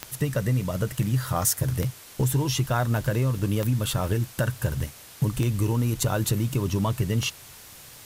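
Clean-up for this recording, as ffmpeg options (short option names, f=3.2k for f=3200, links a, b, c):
-af "adeclick=t=4,afftdn=nr=25:nf=-46"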